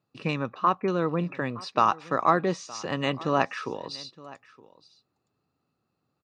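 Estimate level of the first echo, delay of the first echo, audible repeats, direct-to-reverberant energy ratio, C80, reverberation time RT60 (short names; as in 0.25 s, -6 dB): -20.5 dB, 0.917 s, 1, none, none, none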